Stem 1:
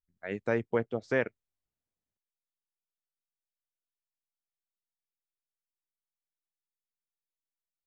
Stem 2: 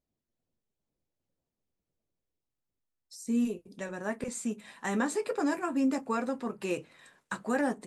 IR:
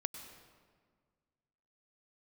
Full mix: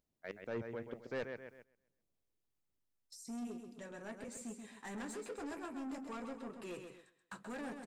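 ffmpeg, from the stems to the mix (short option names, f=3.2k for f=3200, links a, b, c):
-filter_complex "[0:a]aeval=exprs='val(0)*pow(10,-21*if(lt(mod(-3.2*n/s,1),2*abs(-3.2)/1000),1-mod(-3.2*n/s,1)/(2*abs(-3.2)/1000),(mod(-3.2*n/s,1)-2*abs(-3.2)/1000)/(1-2*abs(-3.2)/1000))/20)':c=same,volume=-3.5dB,asplit=2[a][b];[b]volume=-9.5dB[c];[1:a]agate=range=-19dB:threshold=-56dB:ratio=16:detection=peak,acompressor=mode=upward:threshold=-38dB:ratio=2.5,asoftclip=type=tanh:threshold=-30dB,volume=-10dB,asplit=2[d][e];[e]volume=-7dB[f];[c][f]amix=inputs=2:normalize=0,aecho=0:1:131|262|393|524|655|786:1|0.42|0.176|0.0741|0.0311|0.0131[g];[a][d][g]amix=inputs=3:normalize=0,agate=range=-11dB:threshold=-57dB:ratio=16:detection=peak,asoftclip=type=tanh:threshold=-33dB"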